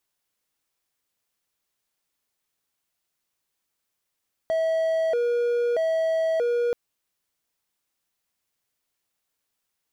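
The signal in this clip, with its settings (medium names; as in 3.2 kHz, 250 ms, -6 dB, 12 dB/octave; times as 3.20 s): siren hi-lo 478–648 Hz 0.79 per s triangle -18.5 dBFS 2.23 s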